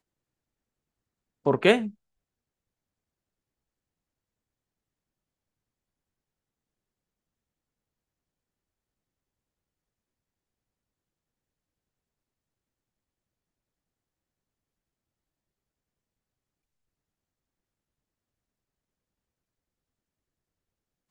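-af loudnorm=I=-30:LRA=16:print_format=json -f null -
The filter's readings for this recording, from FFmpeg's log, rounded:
"input_i" : "-23.8",
"input_tp" : "-6.0",
"input_lra" : "0.0",
"input_thresh" : "-34.9",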